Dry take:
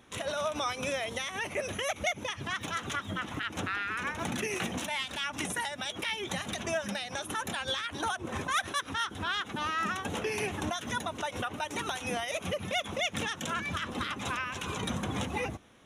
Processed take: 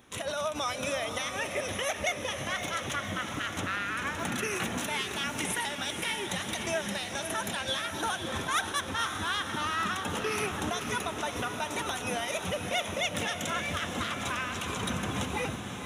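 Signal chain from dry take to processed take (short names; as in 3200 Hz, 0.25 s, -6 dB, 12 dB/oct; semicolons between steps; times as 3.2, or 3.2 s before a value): high shelf 9700 Hz +7.5 dB; diffused feedback echo 0.555 s, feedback 58%, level -6.5 dB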